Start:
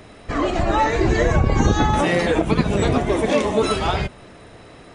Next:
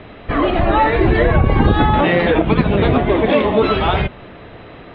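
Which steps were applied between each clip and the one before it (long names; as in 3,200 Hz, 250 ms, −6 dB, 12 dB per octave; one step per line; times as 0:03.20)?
Butterworth low-pass 3,700 Hz 48 dB per octave
in parallel at −3 dB: brickwall limiter −15 dBFS, peak gain reduction 9.5 dB
on the sum: level +1.5 dB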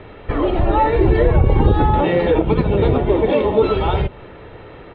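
high-shelf EQ 3,400 Hz −8 dB
comb filter 2.2 ms, depth 39%
dynamic equaliser 1,700 Hz, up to −7 dB, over −32 dBFS, Q 0.97
level −1 dB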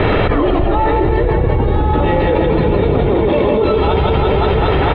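on a send: reverse bouncing-ball delay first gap 160 ms, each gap 1.1×, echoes 5
on the sum: envelope flattener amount 100%
level −6 dB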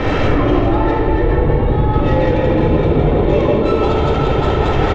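stylus tracing distortion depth 0.045 ms
single-tap delay 409 ms −12.5 dB
rectangular room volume 1,000 cubic metres, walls mixed, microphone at 2.1 metres
level −6 dB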